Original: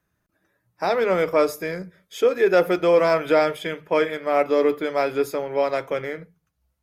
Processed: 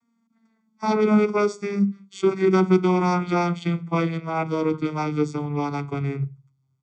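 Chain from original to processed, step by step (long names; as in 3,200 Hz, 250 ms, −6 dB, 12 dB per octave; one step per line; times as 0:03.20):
vocoder with a gliding carrier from A#3, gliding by −10 semitones
bass and treble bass +5 dB, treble +10 dB
comb filter 0.9 ms, depth 88%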